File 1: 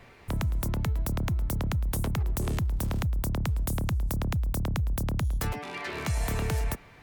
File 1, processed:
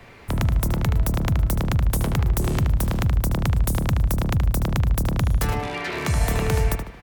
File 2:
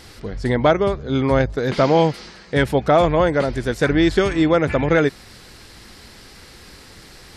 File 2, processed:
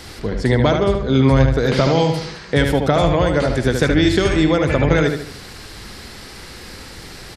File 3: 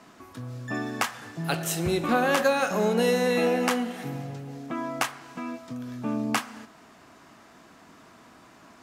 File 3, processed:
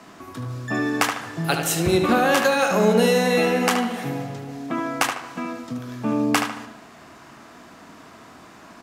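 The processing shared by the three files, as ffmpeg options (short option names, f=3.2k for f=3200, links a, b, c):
-filter_complex "[0:a]acrossover=split=150|3000[a][b][c];[b]acompressor=threshold=-21dB:ratio=6[d];[a][d][c]amix=inputs=3:normalize=0,asplit=2[e][f];[f]adelay=75,lowpass=f=3.8k:p=1,volume=-5dB,asplit=2[g][h];[h]adelay=75,lowpass=f=3.8k:p=1,volume=0.42,asplit=2[i][j];[j]adelay=75,lowpass=f=3.8k:p=1,volume=0.42,asplit=2[k][l];[l]adelay=75,lowpass=f=3.8k:p=1,volume=0.42,asplit=2[m][n];[n]adelay=75,lowpass=f=3.8k:p=1,volume=0.42[o];[e][g][i][k][m][o]amix=inputs=6:normalize=0,volume=6dB"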